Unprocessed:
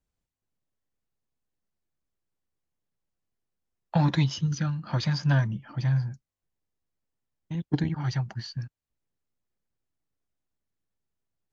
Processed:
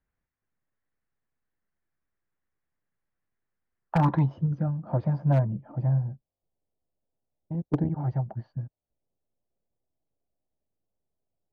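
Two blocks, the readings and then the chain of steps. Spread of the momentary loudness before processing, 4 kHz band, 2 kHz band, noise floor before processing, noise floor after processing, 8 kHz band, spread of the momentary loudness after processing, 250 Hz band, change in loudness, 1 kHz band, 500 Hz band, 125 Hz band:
12 LU, under -15 dB, -8.5 dB, under -85 dBFS, under -85 dBFS, n/a, 12 LU, +0.5 dB, +0.5 dB, +3.0 dB, +4.5 dB, 0.0 dB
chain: low-pass sweep 1800 Hz -> 650 Hz, 3.78–4.37; wavefolder -14 dBFS

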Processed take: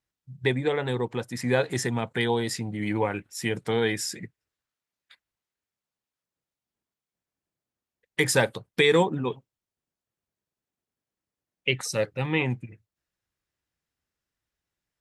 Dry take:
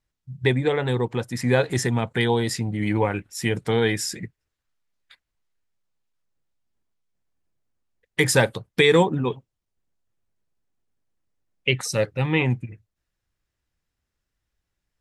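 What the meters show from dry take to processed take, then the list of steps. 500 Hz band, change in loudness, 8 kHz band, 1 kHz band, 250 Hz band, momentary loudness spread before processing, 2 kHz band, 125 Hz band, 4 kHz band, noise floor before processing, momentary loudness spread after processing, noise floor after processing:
-3.5 dB, -4.0 dB, -3.0 dB, -3.0 dB, -4.0 dB, 10 LU, -3.0 dB, -6.5 dB, -3.0 dB, -82 dBFS, 10 LU, under -85 dBFS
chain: HPF 140 Hz 6 dB/oct; gain -3 dB

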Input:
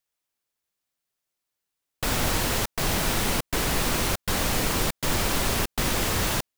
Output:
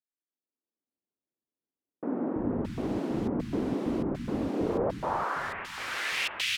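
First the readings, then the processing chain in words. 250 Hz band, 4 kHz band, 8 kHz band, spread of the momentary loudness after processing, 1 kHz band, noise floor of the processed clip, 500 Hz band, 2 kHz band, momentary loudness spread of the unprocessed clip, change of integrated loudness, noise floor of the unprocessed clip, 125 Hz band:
+1.0 dB, -8.5 dB, under -15 dB, 5 LU, -5.0 dB, under -85 dBFS, -1.5 dB, -5.5 dB, 2 LU, -6.5 dB, -84 dBFS, -8.5 dB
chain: band-pass sweep 270 Hz -> 2700 Hz, 4.52–5.67; AGC; three bands offset in time mids, lows, highs 0.33/0.62 s, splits 200/1600 Hz; gain -4 dB

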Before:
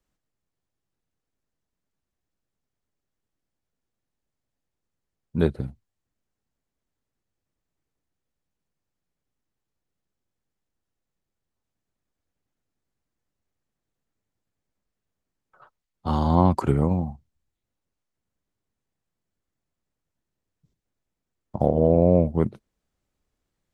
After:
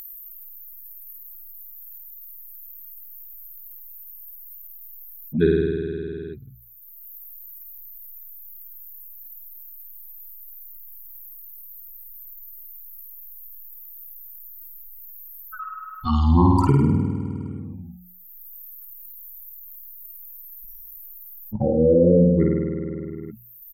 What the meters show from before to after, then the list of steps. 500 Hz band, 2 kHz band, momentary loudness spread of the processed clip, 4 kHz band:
+3.5 dB, +6.5 dB, 21 LU, +3.5 dB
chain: per-bin expansion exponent 3; downsampling 32000 Hz; Butterworth band-stop 660 Hz, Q 2.6; high shelf 3200 Hz -7 dB; notches 60/120/180 Hz; on a send: flutter echo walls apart 8.8 m, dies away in 0.92 s; on the sum: upward compressor, threshold -36 dBFS; dynamic EQ 770 Hz, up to -5 dB, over -47 dBFS, Q 4.3; fast leveller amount 50%; gain +5.5 dB

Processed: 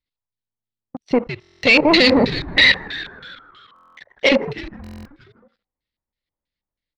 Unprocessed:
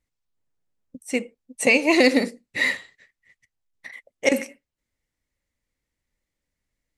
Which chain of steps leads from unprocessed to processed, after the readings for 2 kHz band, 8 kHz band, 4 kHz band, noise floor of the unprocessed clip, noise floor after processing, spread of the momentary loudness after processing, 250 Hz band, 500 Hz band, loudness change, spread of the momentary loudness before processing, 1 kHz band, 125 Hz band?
+6.5 dB, -7.0 dB, +12.5 dB, -84 dBFS, under -85 dBFS, 18 LU, +4.5 dB, +4.5 dB, +6.5 dB, 14 LU, +7.5 dB, +16.0 dB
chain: resonant high shelf 6300 Hz -10 dB, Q 3; sample leveller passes 3; level quantiser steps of 15 dB; on a send: frequency-shifting echo 0.158 s, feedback 60%, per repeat -110 Hz, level -13 dB; on the sum: LFO low-pass square 3.1 Hz 960–3700 Hz; stuck buffer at 1.4/3.74/4.82, samples 1024, times 9; gain +1 dB

